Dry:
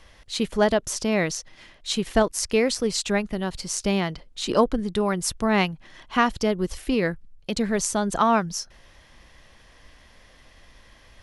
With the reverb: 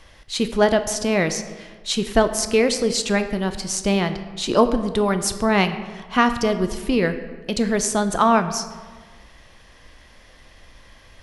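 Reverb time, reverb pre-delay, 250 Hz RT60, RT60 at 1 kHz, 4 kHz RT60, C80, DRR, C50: 1.5 s, 11 ms, 1.4 s, 1.5 s, 0.90 s, 12.0 dB, 9.0 dB, 11.0 dB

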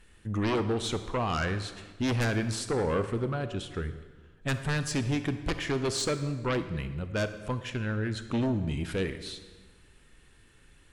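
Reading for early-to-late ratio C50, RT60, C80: 11.0 dB, 1.4 s, 12.5 dB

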